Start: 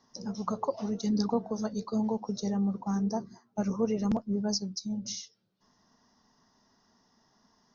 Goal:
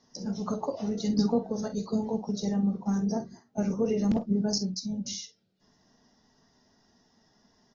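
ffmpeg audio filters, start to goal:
-filter_complex "[0:a]equalizer=f=1.1k:w=1.9:g=-9,asplit=2[a][b];[b]aecho=0:1:21|49:0.211|0.282[c];[a][c]amix=inputs=2:normalize=0,volume=2dB" -ar 44100 -c:a aac -b:a 24k

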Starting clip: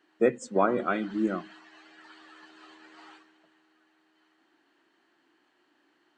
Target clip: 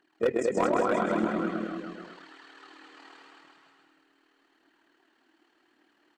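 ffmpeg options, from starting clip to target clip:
-filter_complex "[0:a]tremolo=f=38:d=0.75,asplit=2[a][b];[b]aecho=0:1:129:0.708[c];[a][c]amix=inputs=2:normalize=0,aphaser=in_gain=1:out_gain=1:delay=4.3:decay=0.42:speed=0.86:type=triangular,asplit=2[d][e];[e]aecho=0:1:220|396|536.8|649.4|739.6:0.631|0.398|0.251|0.158|0.1[f];[d][f]amix=inputs=2:normalize=0,asoftclip=type=hard:threshold=-18dB"

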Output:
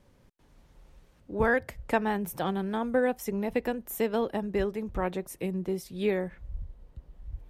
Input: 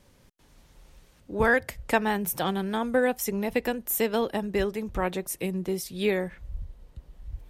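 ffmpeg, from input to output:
-af "highshelf=f=2.3k:g=-9,volume=-1.5dB"

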